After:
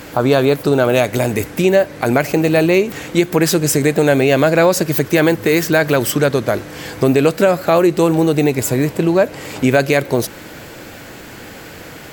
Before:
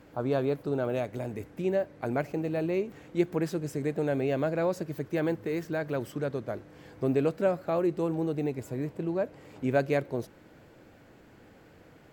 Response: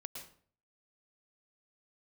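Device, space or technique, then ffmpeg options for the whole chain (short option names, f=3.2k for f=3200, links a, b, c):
mastering chain: -af "equalizer=f=3.3k:t=o:w=2.7:g=-3,acompressor=threshold=-31dB:ratio=2,tiltshelf=f=1.5k:g=-7.5,alimiter=level_in=26.5dB:limit=-1dB:release=50:level=0:latency=1,volume=-1dB"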